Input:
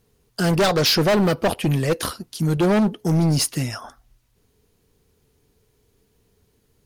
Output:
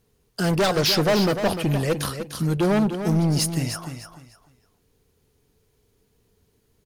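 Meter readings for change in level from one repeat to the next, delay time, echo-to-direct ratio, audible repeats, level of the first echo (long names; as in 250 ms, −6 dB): −12.5 dB, 299 ms, −8.5 dB, 3, −9.0 dB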